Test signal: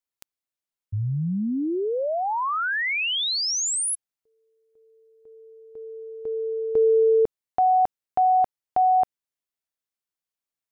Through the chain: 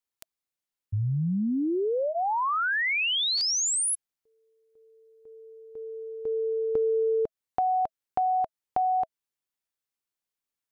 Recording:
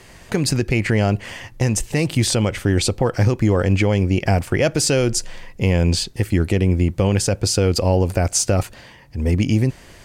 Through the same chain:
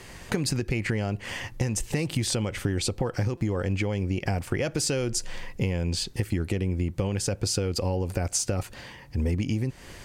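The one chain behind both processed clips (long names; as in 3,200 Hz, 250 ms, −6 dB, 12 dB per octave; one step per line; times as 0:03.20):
notch filter 650 Hz, Q 12
downward compressor 10 to 1, threshold −23 dBFS
buffer that repeats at 0:03.37, samples 256, times 6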